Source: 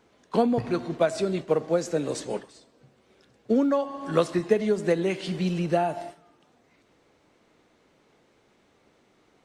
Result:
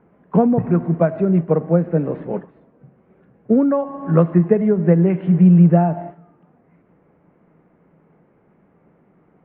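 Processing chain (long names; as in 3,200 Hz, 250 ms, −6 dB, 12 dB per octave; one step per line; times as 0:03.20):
Bessel low-pass filter 1,300 Hz, order 8
parametric band 170 Hz +14 dB 0.45 octaves
level +5.5 dB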